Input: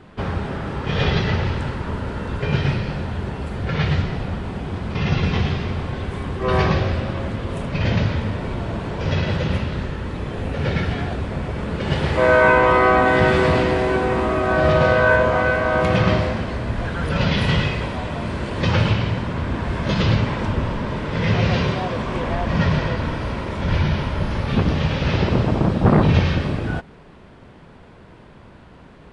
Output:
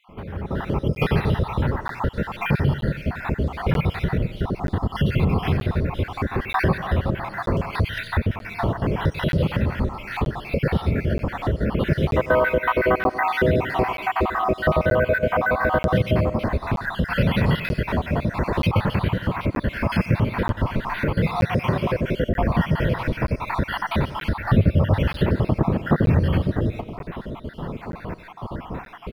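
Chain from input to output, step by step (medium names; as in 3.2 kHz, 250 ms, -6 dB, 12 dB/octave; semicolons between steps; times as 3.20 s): random holes in the spectrogram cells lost 58%; delay 94 ms -16.5 dB; reverberation RT60 0.45 s, pre-delay 110 ms, DRR 19 dB; compression 2.5:1, threshold -40 dBFS, peak gain reduction 19.5 dB; 24.40–25.00 s: fifteen-band graphic EQ 100 Hz +9 dB, 630 Hz +6 dB, 6.3 kHz -9 dB; level rider gain up to 16 dB; treble shelf 4 kHz -9.5 dB; crackling interface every 0.93 s, samples 512, zero, from 0.95 s; decimation joined by straight lines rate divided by 3×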